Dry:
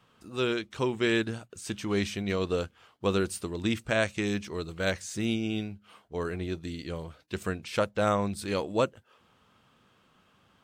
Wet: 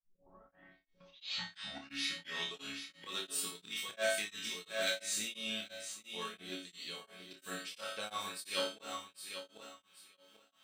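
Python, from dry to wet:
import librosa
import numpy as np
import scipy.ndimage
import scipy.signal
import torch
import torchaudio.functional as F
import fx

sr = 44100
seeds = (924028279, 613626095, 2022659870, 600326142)

y = fx.tape_start_head(x, sr, length_s=2.68)
y = np.clip(y, -10.0 ** (-16.5 / 20.0), 10.0 ** (-16.5 / 20.0))
y = fx.tilt_eq(y, sr, slope=4.0)
y = fx.notch(y, sr, hz=6700.0, q=13.0)
y = fx.resonator_bank(y, sr, root=54, chord='minor', decay_s=0.39)
y = fx.echo_feedback(y, sr, ms=791, feedback_pct=22, wet_db=-8.5)
y = fx.auto_swell(y, sr, attack_ms=145.0)
y = fx.peak_eq(y, sr, hz=3400.0, db=5.0, octaves=0.94)
y = fx.room_flutter(y, sr, wall_m=4.9, rt60_s=0.47)
y = y * np.abs(np.cos(np.pi * 2.9 * np.arange(len(y)) / sr))
y = y * 10.0 ** (8.5 / 20.0)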